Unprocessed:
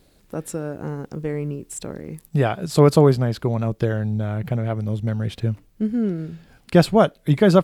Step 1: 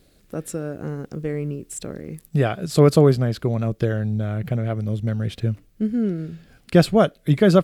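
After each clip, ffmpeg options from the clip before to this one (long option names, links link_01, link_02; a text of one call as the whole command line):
ffmpeg -i in.wav -af "equalizer=frequency=910:width_type=o:width=0.4:gain=-8.5" out.wav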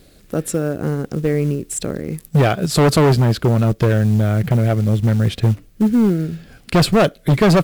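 ffmpeg -i in.wav -af "asoftclip=type=hard:threshold=-18.5dB,acrusher=bits=7:mode=log:mix=0:aa=0.000001,volume=8.5dB" out.wav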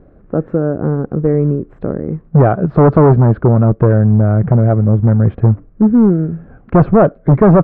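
ffmpeg -i in.wav -af "lowpass=frequency=1300:width=0.5412,lowpass=frequency=1300:width=1.3066,volume=5dB" out.wav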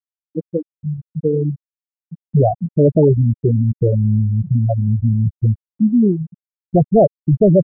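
ffmpeg -i in.wav -af "afftfilt=real='re*gte(hypot(re,im),1.41)':imag='im*gte(hypot(re,im),1.41)':win_size=1024:overlap=0.75,tiltshelf=frequency=660:gain=-5" out.wav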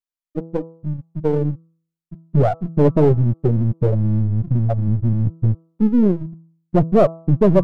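ffmpeg -i in.wav -af "aeval=exprs='if(lt(val(0),0),0.447*val(0),val(0))':channel_layout=same,bandreject=frequency=164.1:width_type=h:width=4,bandreject=frequency=328.2:width_type=h:width=4,bandreject=frequency=492.3:width_type=h:width=4,bandreject=frequency=656.4:width_type=h:width=4,bandreject=frequency=820.5:width_type=h:width=4,bandreject=frequency=984.6:width_type=h:width=4,bandreject=frequency=1148.7:width_type=h:width=4,bandreject=frequency=1312.8:width_type=h:width=4,volume=1dB" out.wav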